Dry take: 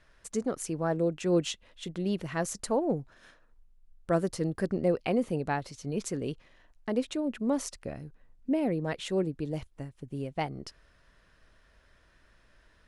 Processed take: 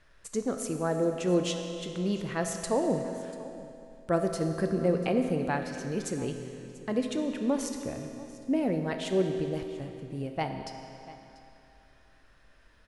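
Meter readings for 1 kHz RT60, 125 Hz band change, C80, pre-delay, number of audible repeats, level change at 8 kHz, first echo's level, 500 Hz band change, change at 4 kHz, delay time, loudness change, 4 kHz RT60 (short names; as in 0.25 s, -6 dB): 2.8 s, +1.0 dB, 6.0 dB, 8 ms, 1, +1.0 dB, -19.0 dB, +1.5 dB, +1.0 dB, 0.69 s, +1.0 dB, 2.5 s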